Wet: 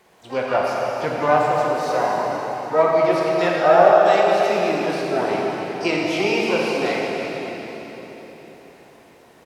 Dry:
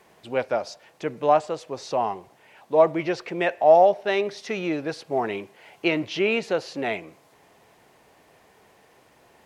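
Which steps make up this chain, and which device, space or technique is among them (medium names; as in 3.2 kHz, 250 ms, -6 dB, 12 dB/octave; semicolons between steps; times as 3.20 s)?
0.54–1.26 s: graphic EQ 125/1000/2000/4000 Hz +8/+9/+5/-4 dB; echo from a far wall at 51 m, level -12 dB; shimmer-style reverb (harmony voices +12 st -11 dB; reverberation RT60 4.2 s, pre-delay 8 ms, DRR -3.5 dB); trim -1 dB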